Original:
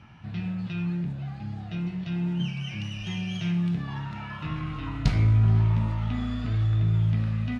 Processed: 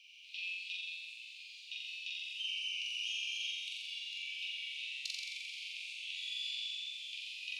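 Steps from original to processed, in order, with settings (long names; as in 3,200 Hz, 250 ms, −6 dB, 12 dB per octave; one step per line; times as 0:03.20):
Butterworth high-pass 2,400 Hz 96 dB per octave
downward compressor, threshold −45 dBFS, peak gain reduction 12 dB
flutter between parallel walls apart 7.5 metres, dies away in 1.5 s
level +4.5 dB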